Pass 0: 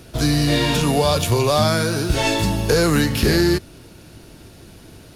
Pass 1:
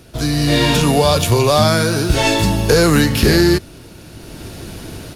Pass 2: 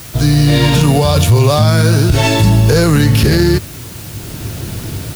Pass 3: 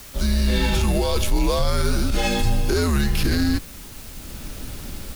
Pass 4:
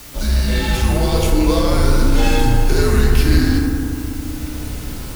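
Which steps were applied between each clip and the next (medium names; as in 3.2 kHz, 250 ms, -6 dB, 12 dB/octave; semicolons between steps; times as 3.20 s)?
level rider gain up to 13 dB; trim -1 dB
peaking EQ 110 Hz +10.5 dB 1.2 oct; added noise white -36 dBFS; loudness maximiser +3.5 dB; trim -1 dB
frequency shift -83 Hz; trim -9 dB
in parallel at -10.5 dB: integer overflow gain 24.5 dB; on the sum: FDN reverb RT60 2.5 s, low-frequency decay 1.4×, high-frequency decay 0.3×, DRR -2 dB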